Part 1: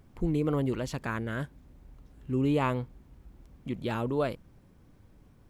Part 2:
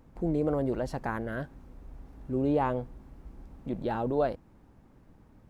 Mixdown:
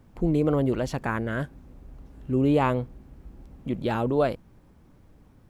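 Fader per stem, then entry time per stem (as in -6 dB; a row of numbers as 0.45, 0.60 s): +0.5, -2.0 dB; 0.00, 0.00 s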